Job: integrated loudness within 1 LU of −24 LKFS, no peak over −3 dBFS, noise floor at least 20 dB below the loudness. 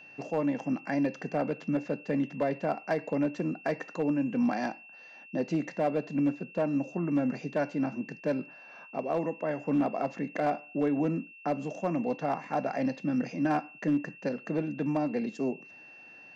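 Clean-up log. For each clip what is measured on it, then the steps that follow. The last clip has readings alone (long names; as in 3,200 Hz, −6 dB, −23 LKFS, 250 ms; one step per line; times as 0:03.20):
share of clipped samples 0.4%; peaks flattened at −20.5 dBFS; interfering tone 2,700 Hz; level of the tone −49 dBFS; integrated loudness −31.5 LKFS; sample peak −20.5 dBFS; target loudness −24.0 LKFS
→ clipped peaks rebuilt −20.5 dBFS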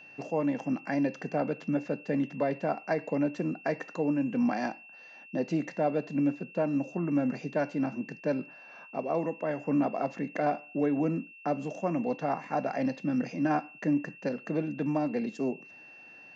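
share of clipped samples 0.0%; interfering tone 2,700 Hz; level of the tone −49 dBFS
→ notch filter 2,700 Hz, Q 30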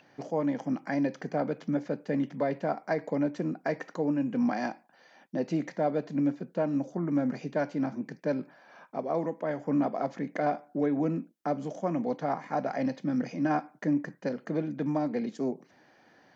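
interfering tone none found; integrated loudness −31.0 LKFS; sample peak −17.0 dBFS; target loudness −24.0 LKFS
→ level +7 dB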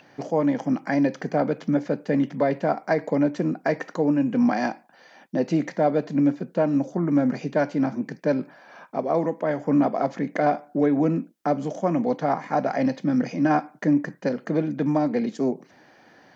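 integrated loudness −24.0 LKFS; sample peak −10.0 dBFS; background noise floor −55 dBFS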